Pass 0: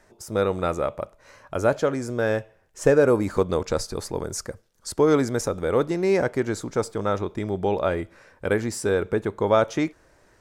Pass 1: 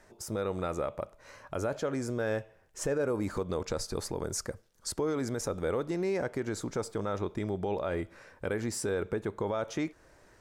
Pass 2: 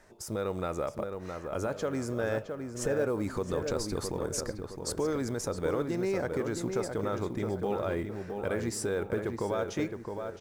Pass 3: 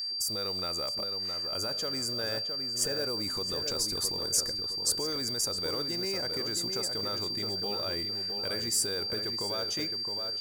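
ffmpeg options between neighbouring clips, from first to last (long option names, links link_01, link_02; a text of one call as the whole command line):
ffmpeg -i in.wav -filter_complex "[0:a]asplit=2[link_01][link_02];[link_02]acompressor=threshold=-31dB:ratio=6,volume=1dB[link_03];[link_01][link_03]amix=inputs=2:normalize=0,alimiter=limit=-14.5dB:level=0:latency=1:release=65,volume=-8dB" out.wav
ffmpeg -i in.wav -filter_complex "[0:a]asplit=2[link_01][link_02];[link_02]adelay=665,lowpass=frequency=2200:poles=1,volume=-5.5dB,asplit=2[link_03][link_04];[link_04]adelay=665,lowpass=frequency=2200:poles=1,volume=0.42,asplit=2[link_05][link_06];[link_06]adelay=665,lowpass=frequency=2200:poles=1,volume=0.42,asplit=2[link_07][link_08];[link_08]adelay=665,lowpass=frequency=2200:poles=1,volume=0.42,asplit=2[link_09][link_10];[link_10]adelay=665,lowpass=frequency=2200:poles=1,volume=0.42[link_11];[link_01][link_03][link_05][link_07][link_09][link_11]amix=inputs=6:normalize=0,acrusher=bits=9:mode=log:mix=0:aa=0.000001" out.wav
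ffmpeg -i in.wav -af "aeval=exprs='val(0)+0.0141*sin(2*PI*4700*n/s)':channel_layout=same,crystalizer=i=5.5:c=0,volume=-7dB" out.wav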